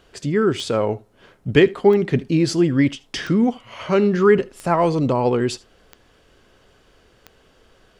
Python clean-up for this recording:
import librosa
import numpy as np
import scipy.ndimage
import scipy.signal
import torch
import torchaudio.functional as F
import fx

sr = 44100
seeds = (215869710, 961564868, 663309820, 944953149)

y = fx.fix_declick_ar(x, sr, threshold=10.0)
y = fx.fix_echo_inverse(y, sr, delay_ms=77, level_db=-23.0)